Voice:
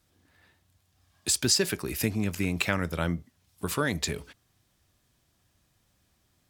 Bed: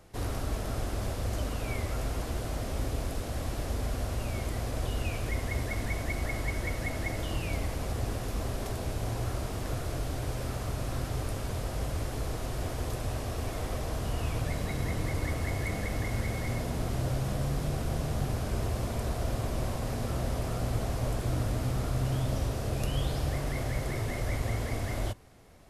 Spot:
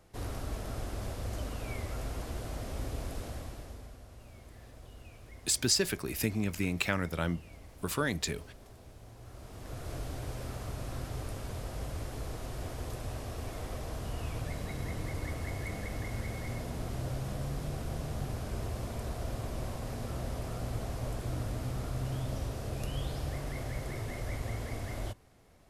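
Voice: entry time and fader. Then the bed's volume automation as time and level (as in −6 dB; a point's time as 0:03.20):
4.20 s, −3.5 dB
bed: 0:03.26 −5 dB
0:04.01 −19 dB
0:09.17 −19 dB
0:09.92 −5.5 dB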